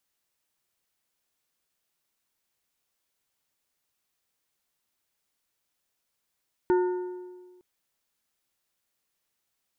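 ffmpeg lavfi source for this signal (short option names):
-f lavfi -i "aevalsrc='0.126*pow(10,-3*t/1.52)*sin(2*PI*362*t)+0.0447*pow(10,-3*t/1.155)*sin(2*PI*905*t)+0.0158*pow(10,-3*t/1.003)*sin(2*PI*1448*t)+0.00562*pow(10,-3*t/0.938)*sin(2*PI*1810*t)':d=0.91:s=44100"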